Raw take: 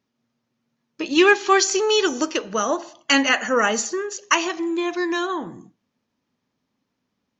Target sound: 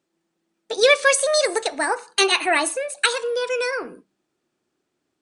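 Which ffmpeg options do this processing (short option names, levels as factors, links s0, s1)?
-af "asetrate=62622,aresample=44100,bandreject=f=65.05:t=h:w=4,bandreject=f=130.1:t=h:w=4,bandreject=f=195.15:t=h:w=4"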